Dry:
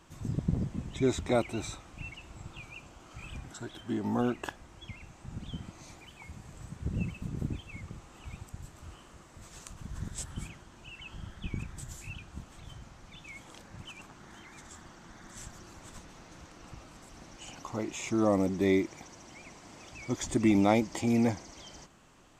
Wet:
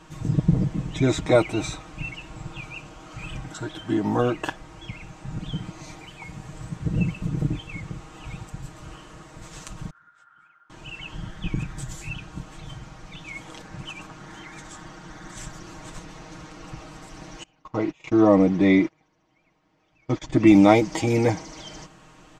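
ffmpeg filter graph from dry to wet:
ffmpeg -i in.wav -filter_complex "[0:a]asettb=1/sr,asplit=3[link_01][link_02][link_03];[link_01]atrim=end=9.904[link_04];[link_02]atrim=start=9.9:end=10.7,asetpts=PTS-STARTPTS,afade=type=in:duration=0.004:curve=qsin,afade=type=out:start_time=0.796:duration=0.004:curve=qsin,acrusher=bits=8:mode=log:mix=0:aa=0.000001,bandpass=frequency=1400:width_type=q:width=15[link_05];[link_03]atrim=start=10.696[link_06];[link_04][link_05]acrossfade=duration=0.004:curve1=hsin:curve2=qsin[link_07];[link_07][link_06]acrossfade=duration=0.004:curve1=qsin:curve2=hsin,asettb=1/sr,asplit=3[link_08][link_09][link_10];[link_08]atrim=end=17.434[link_11];[link_09]atrim=start=17.43:end=20.47,asetpts=PTS-STARTPTS,afade=type=in:duration=0.004:curve=qsin,afade=type=out:start_time=3.036:duration=0.004:curve=qsin,lowpass=4000,agate=range=-25dB:threshold=-40dB:ratio=16:release=100:detection=peak[link_12];[link_10]atrim=start=20.466[link_13];[link_11][link_12]acrossfade=duration=0.004:curve1=hsin:curve2=qsin[link_14];[link_14][link_13]acrossfade=duration=0.004:curve1=qsin:curve2=hsin,highshelf=frequency=9900:gain=-12,aecho=1:1:6.4:0.68,volume=8dB" out.wav

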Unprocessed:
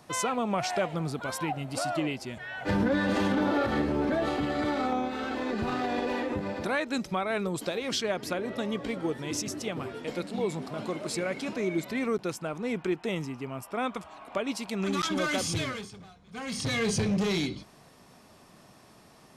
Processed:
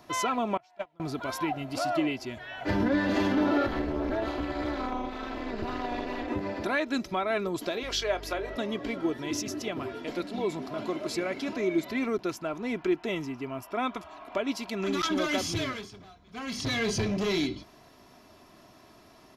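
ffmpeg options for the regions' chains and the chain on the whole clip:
ffmpeg -i in.wav -filter_complex "[0:a]asettb=1/sr,asplit=3[link_01][link_02][link_03];[link_01]atrim=end=0.574[link_04];[link_02]atrim=start=0.57:end=1,asetpts=PTS-STARTPTS,afade=type=in:duration=0.004:curve=qsin,afade=type=out:start_time=0.426:duration=0.004:curve=qsin,bandreject=frequency=400:width=6.7,agate=range=-32dB:threshold=-25dB:ratio=16:release=100:detection=peak,equalizer=frequency=910:width=4.4:gain=6.5[link_05];[link_03]atrim=start=0.996[link_06];[link_04][link_05]acrossfade=duration=0.004:curve1=hsin:curve2=qsin[link_07];[link_07][link_06]acrossfade=duration=0.004:curve1=qsin:curve2=hsin,asettb=1/sr,asplit=3[link_08][link_09][link_10];[link_08]atrim=end=3.684[link_11];[link_09]atrim=start=3.68:end=6.28,asetpts=PTS-STARTPTS,afade=type=in:duration=0.004:curve=qsin,afade=type=out:start_time=2.596:duration=0.004:curve=qsin,tremolo=f=230:d=0.974,asoftclip=type=hard:threshold=-21.5dB[link_12];[link_10]atrim=start=6.276[link_13];[link_11][link_12]acrossfade=duration=0.004:curve1=hsin:curve2=qsin[link_14];[link_14][link_13]acrossfade=duration=0.004:curve1=qsin:curve2=hsin,asettb=1/sr,asplit=3[link_15][link_16][link_17];[link_15]atrim=end=7.834[link_18];[link_16]atrim=start=7.83:end=8.56,asetpts=PTS-STARTPTS,afade=type=in:duration=0.004:curve=qsin,afade=type=out:start_time=0.726:duration=0.004:curve=qsin,highpass=frequency=380:width=0.5412,highpass=frequency=380:width=1.3066,aeval=exprs='val(0)+0.00631*(sin(2*PI*50*n/s)+sin(2*PI*2*50*n/s)/2+sin(2*PI*3*50*n/s)/3+sin(2*PI*4*50*n/s)/4+sin(2*PI*5*50*n/s)/5)':channel_layout=same,asplit=2[link_19][link_20];[link_20]adelay=26,volume=-13dB[link_21];[link_19][link_21]amix=inputs=2:normalize=0,atrim=end_sample=32193[link_22];[link_17]atrim=start=8.556[link_23];[link_18][link_22]acrossfade=duration=0.004:curve1=hsin:curve2=qsin[link_24];[link_24][link_23]acrossfade=duration=0.004:curve1=qsin:curve2=hsin,equalizer=frequency=8600:width=3.1:gain=-13,aecho=1:1:3:0.48" out.wav

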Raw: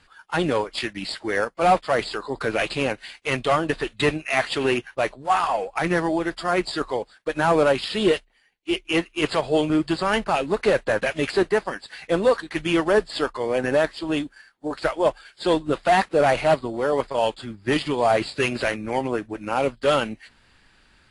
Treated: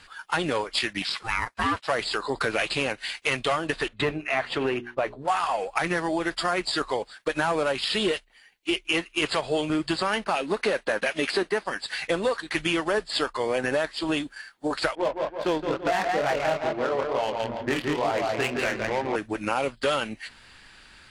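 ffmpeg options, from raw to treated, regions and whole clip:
ffmpeg -i in.wav -filter_complex "[0:a]asettb=1/sr,asplit=3[link_01][link_02][link_03];[link_01]atrim=end=1.024[link_04];[link_02]atrim=start=1.02:end=1.88,asetpts=PTS-STARTPTS,afade=type=in:duration=0.004:curve=qsin,afade=type=out:start_time=0.856:duration=0.004:curve=qsin,highpass=590,acrossover=split=4600[link_05][link_06];[link_06]acompressor=threshold=-43dB:ratio=4:attack=1:release=60[link_07];[link_05][link_07]amix=inputs=2:normalize=0,aeval=exprs='val(0)*sin(2*PI*450*n/s)':channel_layout=same[link_08];[link_03]atrim=start=1.876[link_09];[link_04][link_08]acrossfade=duration=0.004:curve1=hsin:curve2=qsin[link_10];[link_10][link_09]acrossfade=duration=0.004:curve1=qsin:curve2=hsin,asettb=1/sr,asplit=3[link_11][link_12][link_13];[link_11]atrim=end=3.884[link_14];[link_12]atrim=start=3.88:end=5.28,asetpts=PTS-STARTPTS,afade=type=in:duration=0.004:curve=qsin,afade=type=out:start_time=1.396:duration=0.004:curve=qsin,lowpass=frequency=1100:poles=1,bandreject=frequency=60:width_type=h:width=6,bandreject=frequency=120:width_type=h:width=6,bandreject=frequency=180:width_type=h:width=6,bandreject=frequency=240:width_type=h:width=6,bandreject=frequency=300:width_type=h:width=6,bandreject=frequency=360:width_type=h:width=6,bandreject=frequency=420:width_type=h:width=6,asoftclip=type=hard:threshold=-13.5dB[link_15];[link_13]atrim=start=5.276[link_16];[link_14][link_15]acrossfade=duration=0.004:curve1=hsin:curve2=qsin[link_17];[link_17][link_16]acrossfade=duration=0.004:curve1=qsin:curve2=hsin,asettb=1/sr,asplit=3[link_18][link_19][link_20];[link_18]atrim=end=10.024[link_21];[link_19]atrim=start=10.02:end=11.66,asetpts=PTS-STARTPTS,afade=type=in:duration=0.004:curve=qsin,afade=type=out:start_time=1.636:duration=0.004:curve=qsin,lowshelf=frequency=160:width_type=q:width=1.5:gain=-7,bandreject=frequency=7300:width=10[link_22];[link_20]atrim=start=11.656[link_23];[link_21][link_22]acrossfade=duration=0.004:curve1=hsin:curve2=qsin[link_24];[link_24][link_23]acrossfade=duration=0.004:curve1=qsin:curve2=hsin,asettb=1/sr,asplit=3[link_25][link_26][link_27];[link_25]atrim=end=14.954[link_28];[link_26]atrim=start=14.95:end=19.16,asetpts=PTS-STARTPTS,afade=type=in:duration=0.004:curve=qsin,afade=type=out:start_time=4.206:duration=0.004:curve=qsin,aecho=1:1:166|332|498|664|830:0.531|0.202|0.0767|0.0291|0.0111,atrim=end_sample=185661,flanger=delay=20:depth=6.5:speed=2.2,adynamicsmooth=sensitivity=3:basefreq=790[link_29];[link_27]atrim=start=19.156[link_30];[link_28][link_29]acrossfade=duration=0.004:curve1=hsin:curve2=qsin[link_31];[link_31][link_30]acrossfade=duration=0.004:curve1=qsin:curve2=hsin,tiltshelf=frequency=850:gain=-3.5,acompressor=threshold=-29dB:ratio=4,volume=5.5dB" out.wav

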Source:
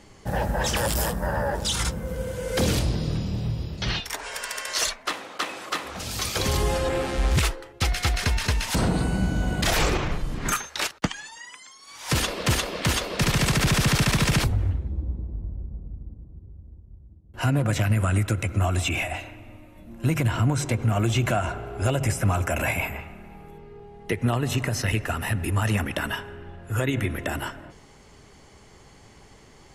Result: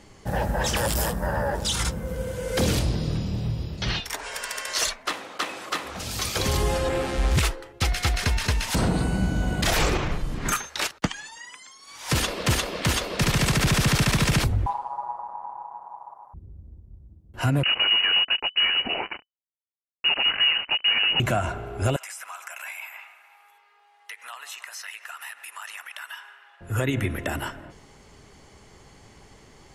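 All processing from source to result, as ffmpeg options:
ffmpeg -i in.wav -filter_complex "[0:a]asettb=1/sr,asplit=3[link_01][link_02][link_03];[link_01]atrim=end=14.664[link_04];[link_02]atrim=start=14.66:end=16.34,asetpts=PTS-STARTPTS,afade=type=in:duration=0.004:curve=qsin,afade=type=out:start_time=1.676:duration=0.004:curve=qsin,highpass=51,aeval=exprs='val(0)*sin(2*PI*900*n/s)':channel_layout=same,bass=frequency=250:gain=7,treble=frequency=4000:gain=10[link_05];[link_03]atrim=start=16.336[link_06];[link_04][link_05]acrossfade=duration=0.004:curve1=hsin:curve2=qsin[link_07];[link_07][link_06]acrossfade=duration=0.004:curve1=qsin:curve2=hsin,asettb=1/sr,asplit=3[link_08][link_09][link_10];[link_08]atrim=end=17.634[link_11];[link_09]atrim=start=17.63:end=21.2,asetpts=PTS-STARTPTS,afade=type=in:duration=0.004:curve=qsin,afade=type=out:start_time=3.566:duration=0.004:curve=qsin,acrusher=bits=3:mix=0:aa=0.5,lowpass=frequency=2600:width_type=q:width=0.5098,lowpass=frequency=2600:width_type=q:width=0.6013,lowpass=frequency=2600:width_type=q:width=0.9,lowpass=frequency=2600:width_type=q:width=2.563,afreqshift=-3000[link_12];[link_10]atrim=start=21.196[link_13];[link_11][link_12]acrossfade=duration=0.004:curve1=hsin:curve2=qsin[link_14];[link_14][link_13]acrossfade=duration=0.004:curve1=qsin:curve2=hsin,asettb=1/sr,asplit=3[link_15][link_16][link_17];[link_15]atrim=end=21.964[link_18];[link_16]atrim=start=21.96:end=26.61,asetpts=PTS-STARTPTS,afade=type=in:duration=0.004:curve=qsin,afade=type=out:start_time=4.646:duration=0.004:curve=qsin,highpass=frequency=990:width=0.5412,highpass=frequency=990:width=1.3066,acompressor=threshold=-37dB:ratio=2.5:attack=3.2:release=140:knee=1:detection=peak[link_19];[link_17]atrim=start=26.606[link_20];[link_18][link_19]acrossfade=duration=0.004:curve1=hsin:curve2=qsin[link_21];[link_21][link_20]acrossfade=duration=0.004:curve1=qsin:curve2=hsin" out.wav

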